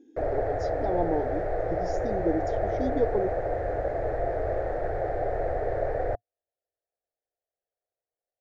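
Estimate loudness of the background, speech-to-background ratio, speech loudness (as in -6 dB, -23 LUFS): -30.0 LUFS, -2.5 dB, -32.5 LUFS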